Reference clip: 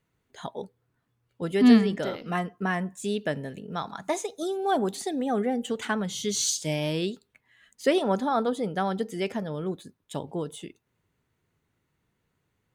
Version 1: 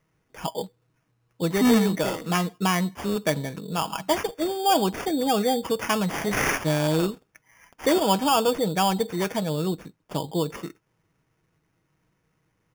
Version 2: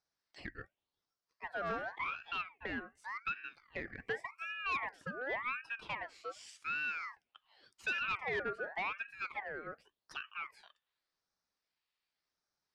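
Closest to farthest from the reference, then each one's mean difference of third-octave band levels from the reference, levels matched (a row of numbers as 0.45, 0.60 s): 1, 2; 9.0, 12.0 dB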